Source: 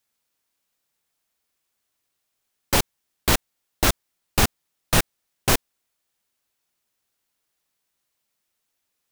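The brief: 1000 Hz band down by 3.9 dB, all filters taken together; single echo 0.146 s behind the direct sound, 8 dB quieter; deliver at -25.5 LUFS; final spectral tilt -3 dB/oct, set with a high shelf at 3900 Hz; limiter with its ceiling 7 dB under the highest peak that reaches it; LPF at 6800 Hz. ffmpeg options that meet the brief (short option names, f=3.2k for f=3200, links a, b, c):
-af "lowpass=6.8k,equalizer=f=1k:t=o:g=-5.5,highshelf=f=3.9k:g=3.5,alimiter=limit=-11dB:level=0:latency=1,aecho=1:1:146:0.398,volume=2.5dB"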